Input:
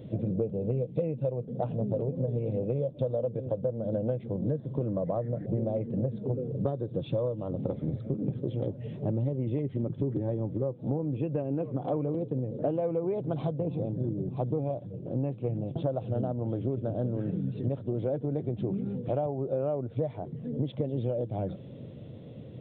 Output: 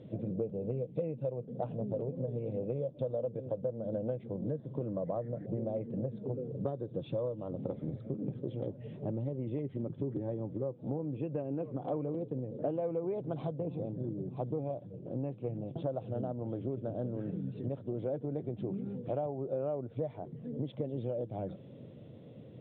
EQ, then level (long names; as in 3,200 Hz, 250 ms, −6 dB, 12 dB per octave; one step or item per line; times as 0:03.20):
high-frequency loss of the air 110 metres
low-shelf EQ 85 Hz −11 dB
−4.0 dB